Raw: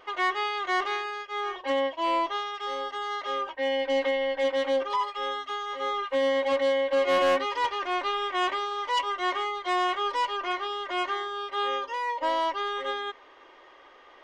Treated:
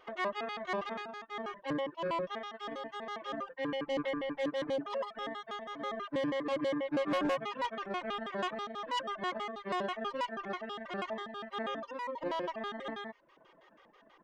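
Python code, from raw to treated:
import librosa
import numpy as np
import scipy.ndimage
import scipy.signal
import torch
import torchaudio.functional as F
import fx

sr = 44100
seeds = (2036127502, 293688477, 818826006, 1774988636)

y = fx.pitch_trill(x, sr, semitones=-10.5, every_ms=81)
y = fx.dereverb_blind(y, sr, rt60_s=0.65)
y = y * librosa.db_to_amplitude(-7.5)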